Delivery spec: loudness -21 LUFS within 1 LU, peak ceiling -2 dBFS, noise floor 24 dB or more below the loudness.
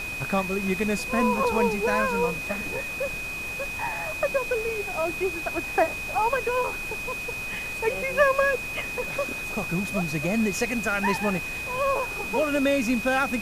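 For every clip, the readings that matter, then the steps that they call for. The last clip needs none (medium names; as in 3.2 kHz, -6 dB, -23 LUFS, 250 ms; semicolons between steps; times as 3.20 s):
steady tone 2.5 kHz; tone level -31 dBFS; noise floor -33 dBFS; noise floor target -50 dBFS; loudness -25.5 LUFS; peak level -9.0 dBFS; loudness target -21.0 LUFS
-> band-stop 2.5 kHz, Q 30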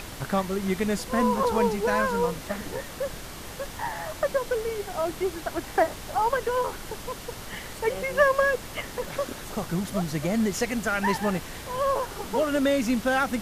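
steady tone not found; noise floor -40 dBFS; noise floor target -51 dBFS
-> noise print and reduce 11 dB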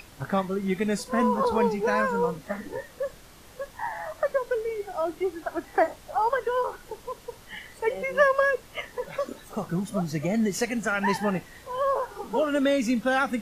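noise floor -50 dBFS; noise floor target -51 dBFS
-> noise print and reduce 6 dB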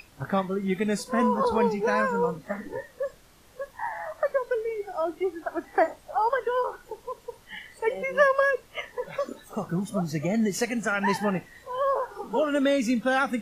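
noise floor -55 dBFS; loudness -27.0 LUFS; peak level -10.0 dBFS; loudness target -21.0 LUFS
-> trim +6 dB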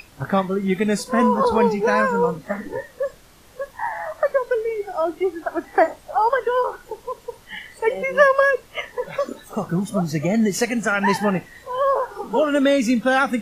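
loudness -21.0 LUFS; peak level -4.0 dBFS; noise floor -49 dBFS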